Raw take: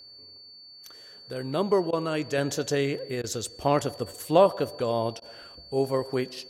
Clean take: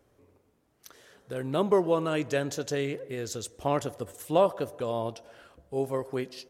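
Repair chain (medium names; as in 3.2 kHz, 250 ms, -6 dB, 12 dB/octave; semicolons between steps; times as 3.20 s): band-stop 4.5 kHz, Q 30; interpolate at 1.91/3.22/5.20 s, 17 ms; trim 0 dB, from 2.38 s -4 dB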